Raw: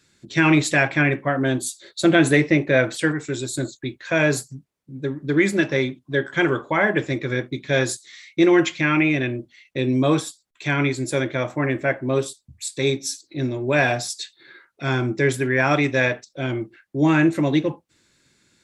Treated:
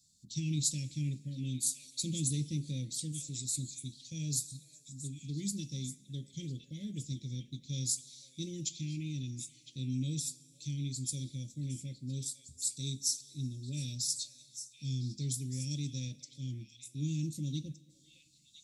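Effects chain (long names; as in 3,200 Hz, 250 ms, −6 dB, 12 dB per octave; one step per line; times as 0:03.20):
inverse Chebyshev band-stop filter 750–1,500 Hz, stop band 80 dB
low shelf with overshoot 450 Hz −6.5 dB, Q 3
on a send: echo through a band-pass that steps 505 ms, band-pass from 1,100 Hz, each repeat 1.4 octaves, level −5 dB
on the sum: dense smooth reverb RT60 2.1 s, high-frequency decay 0.95×, DRR 20 dB
level −3 dB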